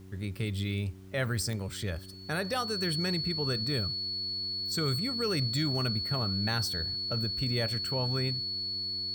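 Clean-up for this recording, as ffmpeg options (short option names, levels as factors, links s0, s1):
-af "adeclick=t=4,bandreject=f=94.9:t=h:w=4,bandreject=f=189.8:t=h:w=4,bandreject=f=284.7:t=h:w=4,bandreject=f=379.6:t=h:w=4,bandreject=f=4400:w=30,agate=range=0.0891:threshold=0.0316"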